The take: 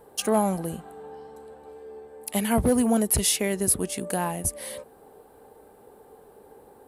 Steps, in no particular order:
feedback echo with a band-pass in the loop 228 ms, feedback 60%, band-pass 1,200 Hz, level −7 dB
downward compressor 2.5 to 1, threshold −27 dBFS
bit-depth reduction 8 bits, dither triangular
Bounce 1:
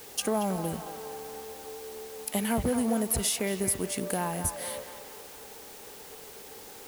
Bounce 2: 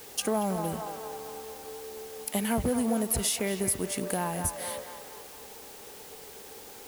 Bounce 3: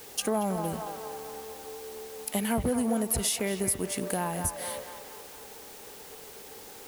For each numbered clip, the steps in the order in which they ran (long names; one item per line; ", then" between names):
downward compressor, then bit-depth reduction, then feedback echo with a band-pass in the loop
feedback echo with a band-pass in the loop, then downward compressor, then bit-depth reduction
bit-depth reduction, then feedback echo with a band-pass in the loop, then downward compressor